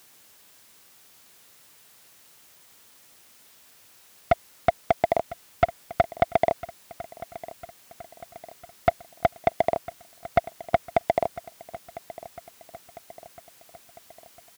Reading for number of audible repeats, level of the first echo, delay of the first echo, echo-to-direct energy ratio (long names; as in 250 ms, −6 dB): 4, −17.5 dB, 1,002 ms, −16.0 dB